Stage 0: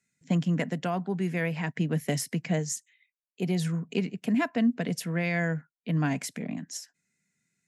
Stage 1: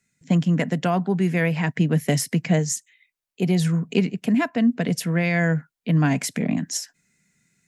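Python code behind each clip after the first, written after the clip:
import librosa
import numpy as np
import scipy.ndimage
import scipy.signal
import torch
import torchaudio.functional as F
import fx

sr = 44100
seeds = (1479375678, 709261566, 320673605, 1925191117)

y = fx.low_shelf(x, sr, hz=65.0, db=11.0)
y = fx.rider(y, sr, range_db=4, speed_s=0.5)
y = F.gain(torch.from_numpy(y), 6.5).numpy()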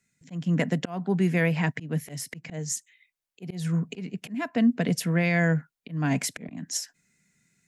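y = fx.auto_swell(x, sr, attack_ms=283.0)
y = F.gain(torch.from_numpy(y), -2.0).numpy()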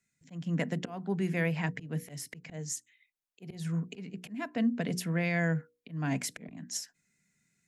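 y = fx.hum_notches(x, sr, base_hz=60, count=8)
y = F.gain(torch.from_numpy(y), -6.0).numpy()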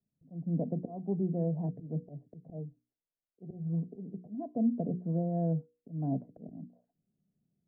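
y = scipy.signal.sosfilt(scipy.signal.ellip(4, 1.0, 80, 690.0, 'lowpass', fs=sr, output='sos'), x)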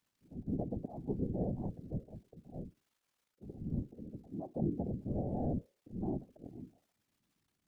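y = fx.dmg_crackle(x, sr, seeds[0], per_s=390.0, level_db=-61.0)
y = fx.whisperise(y, sr, seeds[1])
y = F.gain(torch.from_numpy(y), -4.5).numpy()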